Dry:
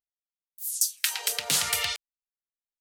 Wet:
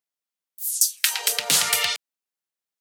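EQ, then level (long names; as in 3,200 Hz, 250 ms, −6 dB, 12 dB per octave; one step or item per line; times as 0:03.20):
high-pass filter 160 Hz 12 dB per octave
+5.5 dB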